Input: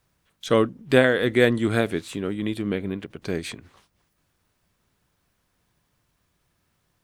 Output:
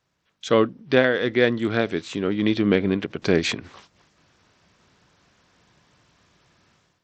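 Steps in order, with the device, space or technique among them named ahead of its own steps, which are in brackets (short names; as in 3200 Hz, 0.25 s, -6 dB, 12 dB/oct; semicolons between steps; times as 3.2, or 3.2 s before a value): Bluetooth headset (HPF 140 Hz 6 dB/oct; AGC gain up to 14 dB; downsampling 16000 Hz; gain -1.5 dB; SBC 64 kbps 32000 Hz)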